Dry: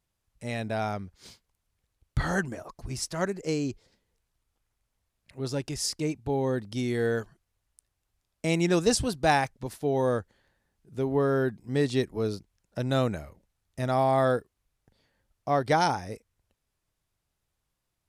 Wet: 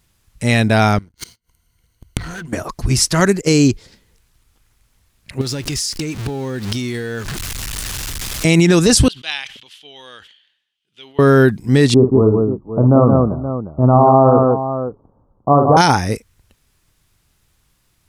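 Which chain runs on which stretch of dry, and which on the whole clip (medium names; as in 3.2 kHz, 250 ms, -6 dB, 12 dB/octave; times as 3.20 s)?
0.98–2.53 s: rippled EQ curve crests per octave 1.9, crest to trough 11 dB + waveshaping leveller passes 3 + inverted gate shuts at -32 dBFS, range -28 dB
3.20–3.68 s: expander -37 dBFS + treble shelf 5.4 kHz +5 dB
5.41–8.45 s: jump at every zero crossing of -40.5 dBFS + peaking EQ 4.6 kHz +5 dB 2.8 oct + compression 16:1, threshold -38 dBFS
9.08–11.19 s: band-pass filter 3.1 kHz, Q 7.7 + decay stretcher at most 79 dB/s
11.94–15.77 s: steep low-pass 1.2 kHz 72 dB/octave + bass shelf 140 Hz -6.5 dB + multi-tap echo 48/55/173/524 ms -10/-11.5/-4/-12.5 dB
whole clip: peaking EQ 640 Hz -6.5 dB 1.3 oct; loudness maximiser +21 dB; trim -1 dB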